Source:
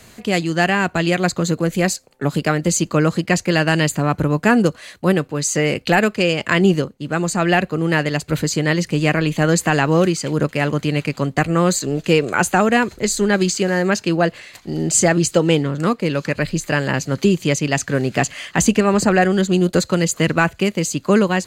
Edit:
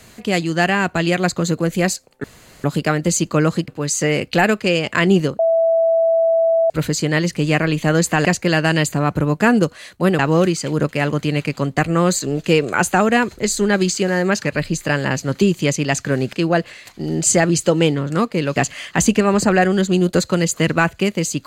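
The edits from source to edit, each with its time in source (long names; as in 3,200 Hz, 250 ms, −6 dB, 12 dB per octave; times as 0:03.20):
0:02.24: splice in room tone 0.40 s
0:03.28–0:05.22: move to 0:09.79
0:06.93–0:08.24: beep over 659 Hz −12 dBFS
0:16.24–0:18.16: move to 0:14.01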